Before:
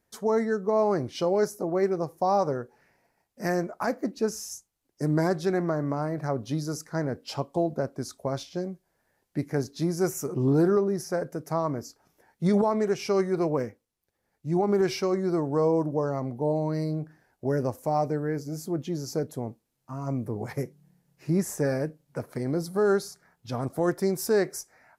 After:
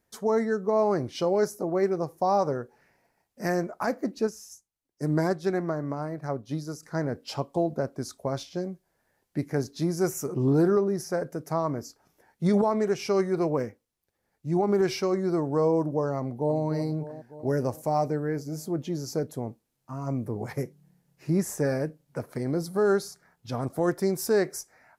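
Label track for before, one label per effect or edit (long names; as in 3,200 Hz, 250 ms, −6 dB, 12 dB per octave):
4.270000	6.830000	expander for the loud parts, over −42 dBFS
16.190000	16.610000	delay throw 300 ms, feedback 65%, level −11 dB
17.480000	18.100000	parametric band 10,000 Hz +3.5 dB 2 octaves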